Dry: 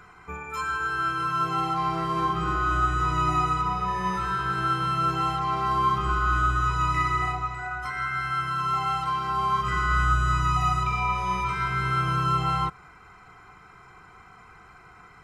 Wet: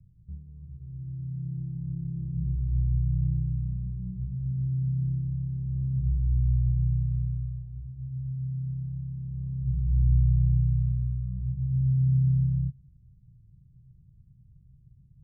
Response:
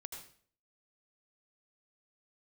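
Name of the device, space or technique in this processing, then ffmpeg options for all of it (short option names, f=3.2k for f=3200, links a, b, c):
the neighbour's flat through the wall: -af "lowpass=f=150:w=0.5412,lowpass=f=150:w=1.3066,equalizer=f=130:t=o:w=0.44:g=6,volume=2.5dB"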